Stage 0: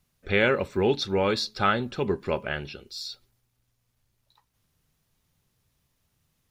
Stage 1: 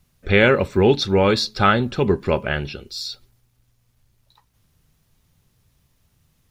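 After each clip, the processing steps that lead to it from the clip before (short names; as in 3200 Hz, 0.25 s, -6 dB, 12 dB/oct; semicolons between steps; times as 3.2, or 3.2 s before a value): low shelf 180 Hz +6 dB; gain +6.5 dB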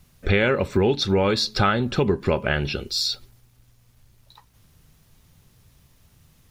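compressor 4:1, threshold -25 dBFS, peak gain reduction 13 dB; gain +6.5 dB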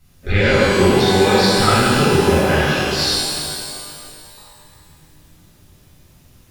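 shimmer reverb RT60 2.4 s, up +12 st, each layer -8 dB, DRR -10.5 dB; gain -4.5 dB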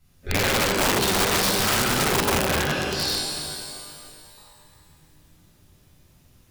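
wrapped overs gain 8.5 dB; gain -7 dB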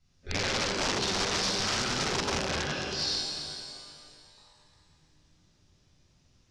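ladder low-pass 6600 Hz, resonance 45%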